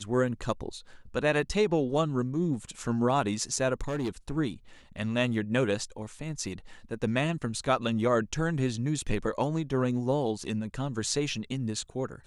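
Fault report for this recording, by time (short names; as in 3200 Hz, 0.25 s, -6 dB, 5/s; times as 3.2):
3.81–4.1 clipped -27 dBFS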